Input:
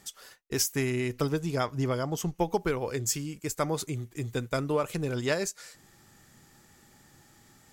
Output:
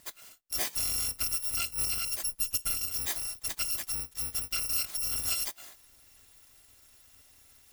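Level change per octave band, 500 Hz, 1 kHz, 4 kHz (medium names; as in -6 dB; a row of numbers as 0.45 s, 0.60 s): -22.5 dB, -12.0 dB, +4.0 dB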